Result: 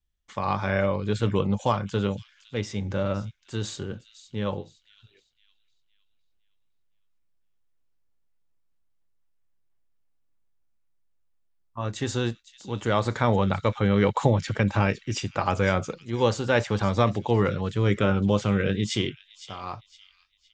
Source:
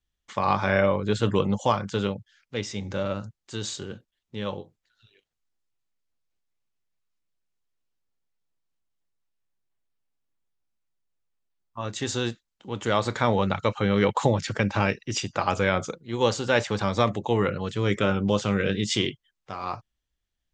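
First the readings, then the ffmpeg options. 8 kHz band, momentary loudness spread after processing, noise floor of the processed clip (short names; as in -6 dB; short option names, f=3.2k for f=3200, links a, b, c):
-3.5 dB, 14 LU, -68 dBFS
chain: -filter_complex "[0:a]lowshelf=f=110:g=8.5,acrossover=split=2400[a][b];[a]dynaudnorm=f=110:g=31:m=5.5dB[c];[b]asplit=2[d][e];[e]adelay=511,lowpass=f=4.5k:p=1,volume=-9dB,asplit=2[f][g];[g]adelay=511,lowpass=f=4.5k:p=1,volume=0.49,asplit=2[h][i];[i]adelay=511,lowpass=f=4.5k:p=1,volume=0.49,asplit=2[j][k];[k]adelay=511,lowpass=f=4.5k:p=1,volume=0.49,asplit=2[l][m];[m]adelay=511,lowpass=f=4.5k:p=1,volume=0.49,asplit=2[n][o];[o]adelay=511,lowpass=f=4.5k:p=1,volume=0.49[p];[d][f][h][j][l][n][p]amix=inputs=7:normalize=0[q];[c][q]amix=inputs=2:normalize=0,volume=-4dB"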